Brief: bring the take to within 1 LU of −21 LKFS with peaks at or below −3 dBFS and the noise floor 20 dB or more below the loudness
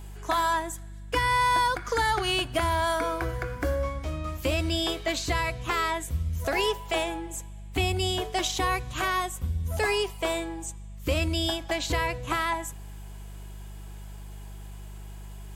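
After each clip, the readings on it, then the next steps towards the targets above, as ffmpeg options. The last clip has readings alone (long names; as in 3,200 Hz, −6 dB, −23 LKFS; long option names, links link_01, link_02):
mains hum 50 Hz; hum harmonics up to 200 Hz; level of the hum −38 dBFS; integrated loudness −27.5 LKFS; sample peak −14.0 dBFS; target loudness −21.0 LKFS
→ -af "bandreject=frequency=50:width_type=h:width=4,bandreject=frequency=100:width_type=h:width=4,bandreject=frequency=150:width_type=h:width=4,bandreject=frequency=200:width_type=h:width=4"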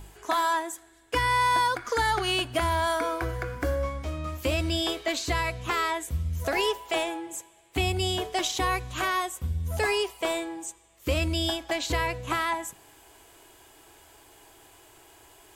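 mains hum none found; integrated loudness −28.0 LKFS; sample peak −14.5 dBFS; target loudness −21.0 LKFS
→ -af "volume=7dB"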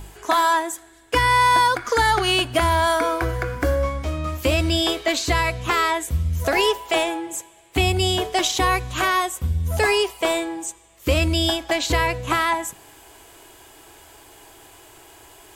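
integrated loudness −21.0 LKFS; sample peak −7.5 dBFS; background noise floor −49 dBFS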